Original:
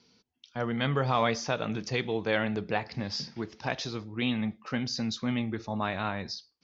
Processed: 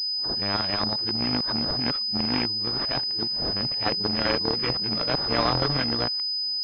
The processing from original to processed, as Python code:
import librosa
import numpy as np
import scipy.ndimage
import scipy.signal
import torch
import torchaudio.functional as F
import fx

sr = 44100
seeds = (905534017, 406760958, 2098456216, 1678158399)

y = np.flip(x).copy()
y = (np.kron(y[::3], np.eye(3)[0]) * 3)[:len(y)]
y = fx.pwm(y, sr, carrier_hz=5000.0)